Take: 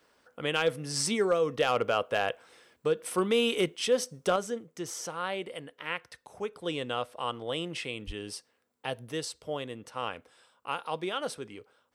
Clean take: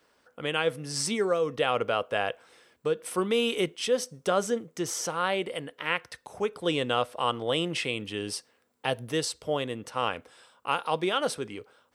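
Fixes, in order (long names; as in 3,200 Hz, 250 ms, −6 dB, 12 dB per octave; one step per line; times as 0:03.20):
clipped peaks rebuilt −16.5 dBFS
high-pass at the plosives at 0:08.06
level correction +6 dB, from 0:04.36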